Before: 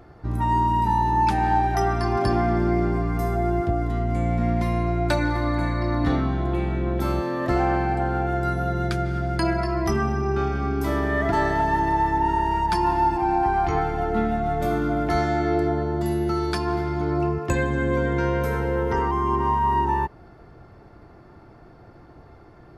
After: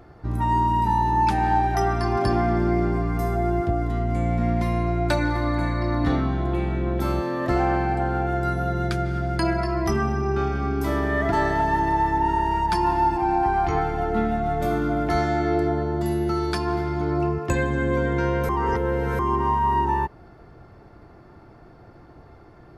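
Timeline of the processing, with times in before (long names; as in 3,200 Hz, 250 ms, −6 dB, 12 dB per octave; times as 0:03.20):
0:18.49–0:19.19: reverse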